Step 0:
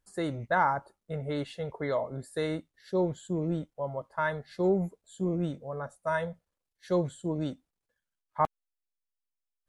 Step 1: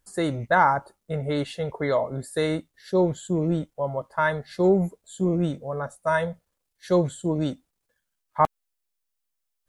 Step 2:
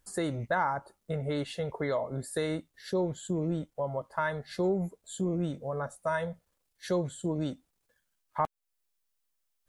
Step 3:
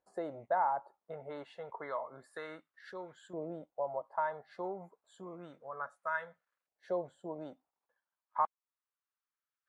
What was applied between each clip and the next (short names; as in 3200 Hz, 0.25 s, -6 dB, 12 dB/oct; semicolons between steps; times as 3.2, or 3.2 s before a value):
high shelf 6500 Hz +5 dB; gain +6.5 dB
compressor 2:1, threshold -35 dBFS, peak gain reduction 11.5 dB; gain +1 dB
LFO band-pass saw up 0.3 Hz 650–1600 Hz; gain +1 dB